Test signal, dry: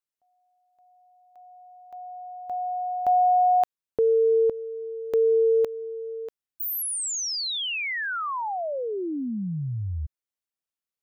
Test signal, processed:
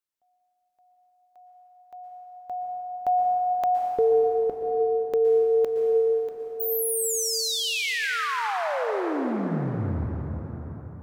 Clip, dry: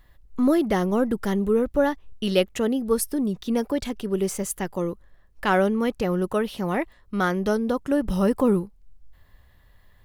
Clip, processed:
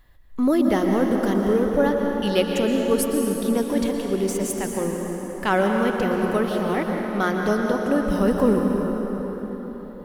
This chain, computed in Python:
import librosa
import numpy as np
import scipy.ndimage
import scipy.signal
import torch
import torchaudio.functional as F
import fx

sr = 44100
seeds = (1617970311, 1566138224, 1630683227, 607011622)

y = fx.hum_notches(x, sr, base_hz=60, count=3)
y = fx.rev_plate(y, sr, seeds[0], rt60_s=4.9, hf_ratio=0.6, predelay_ms=105, drr_db=1.0)